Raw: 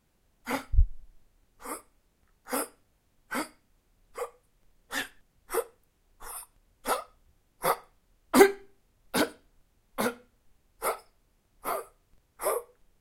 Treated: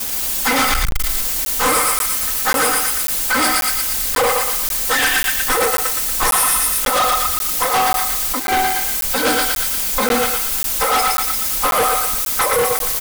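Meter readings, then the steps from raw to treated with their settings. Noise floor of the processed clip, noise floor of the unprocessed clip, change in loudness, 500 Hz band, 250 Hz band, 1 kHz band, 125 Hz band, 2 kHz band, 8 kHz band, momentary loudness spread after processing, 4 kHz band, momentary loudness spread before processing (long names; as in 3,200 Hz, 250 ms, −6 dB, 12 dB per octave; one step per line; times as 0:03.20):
−21 dBFS, −71 dBFS, +15.5 dB, +9.0 dB, +6.5 dB, +17.0 dB, +5.5 dB, +17.5 dB, +23.5 dB, 3 LU, +21.5 dB, 15 LU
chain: background noise violet −57 dBFS
low-shelf EQ 430 Hz −10 dB
hum removal 377.7 Hz, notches 3
compressor whose output falls as the input rises −43 dBFS, ratio −1
high-shelf EQ 8,600 Hz −6 dB
comb filter 3.9 ms, depth 96%
feedback echo with a high-pass in the loop 117 ms, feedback 60%, high-pass 1,100 Hz, level −3.5 dB
fuzz pedal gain 51 dB, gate −52 dBFS
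regular buffer underruns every 0.54 s, samples 512, zero, from 0:00.91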